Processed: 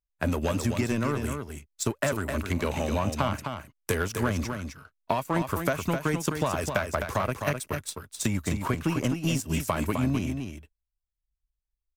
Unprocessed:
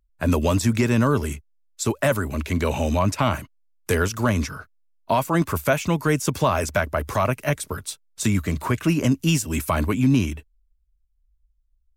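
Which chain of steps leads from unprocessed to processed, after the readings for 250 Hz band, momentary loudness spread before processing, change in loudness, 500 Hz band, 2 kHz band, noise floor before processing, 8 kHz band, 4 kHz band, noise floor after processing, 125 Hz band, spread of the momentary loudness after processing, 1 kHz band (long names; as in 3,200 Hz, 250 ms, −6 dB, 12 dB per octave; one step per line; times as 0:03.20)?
−6.5 dB, 10 LU, −6.5 dB, −5.5 dB, −5.0 dB, −66 dBFS, −5.0 dB, −5.0 dB, −85 dBFS, −6.5 dB, 8 LU, −5.5 dB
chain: downward compressor, threshold −21 dBFS, peak gain reduction 7.5 dB
power curve on the samples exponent 1.4
on a send: single-tap delay 258 ms −6.5 dB
on the sum: level +1.5 dB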